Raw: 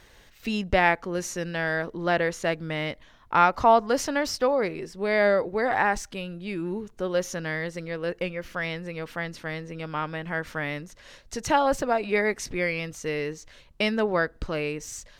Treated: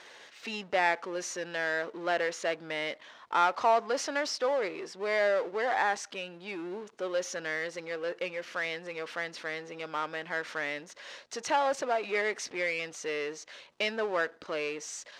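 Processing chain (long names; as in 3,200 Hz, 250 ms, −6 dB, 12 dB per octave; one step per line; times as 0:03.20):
power curve on the samples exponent 0.7
band-pass filter 430–6,400 Hz
level −8 dB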